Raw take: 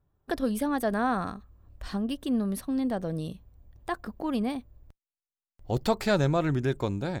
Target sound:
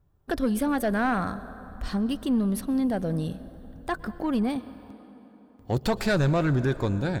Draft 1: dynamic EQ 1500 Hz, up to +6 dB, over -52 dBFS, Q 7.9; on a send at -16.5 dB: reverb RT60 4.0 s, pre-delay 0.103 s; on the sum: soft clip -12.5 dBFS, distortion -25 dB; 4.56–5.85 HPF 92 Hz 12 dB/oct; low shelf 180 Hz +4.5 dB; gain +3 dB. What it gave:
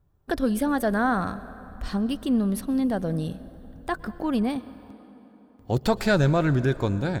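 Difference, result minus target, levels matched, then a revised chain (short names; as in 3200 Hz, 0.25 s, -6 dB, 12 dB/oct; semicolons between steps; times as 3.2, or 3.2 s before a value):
soft clip: distortion -11 dB
dynamic EQ 1500 Hz, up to +6 dB, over -52 dBFS, Q 7.9; on a send at -16.5 dB: reverb RT60 4.0 s, pre-delay 0.103 s; on the sum: soft clip -21 dBFS, distortion -14 dB; 4.56–5.85 HPF 92 Hz 12 dB/oct; low shelf 180 Hz +4.5 dB; gain +3 dB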